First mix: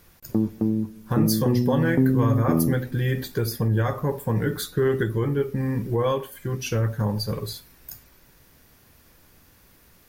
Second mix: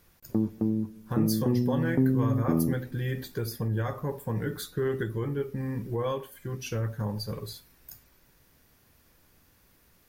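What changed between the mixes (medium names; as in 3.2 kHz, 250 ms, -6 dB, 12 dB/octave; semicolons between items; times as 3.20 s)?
speech -7.0 dB; background -4.0 dB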